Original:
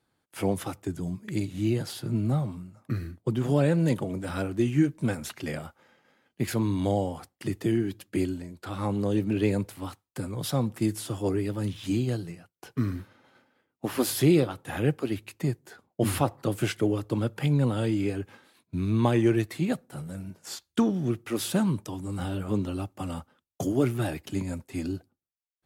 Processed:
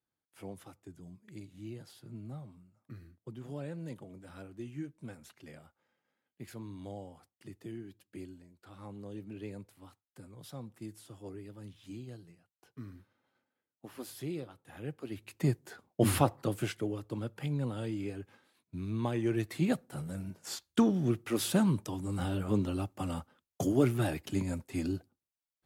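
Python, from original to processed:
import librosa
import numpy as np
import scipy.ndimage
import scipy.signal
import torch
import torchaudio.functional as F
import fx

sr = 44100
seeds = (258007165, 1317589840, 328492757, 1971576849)

y = fx.gain(x, sr, db=fx.line((14.73, -18.0), (15.15, -10.5), (15.46, -1.0), (16.21, -1.0), (16.88, -10.0), (19.21, -10.0), (19.63, -2.0)))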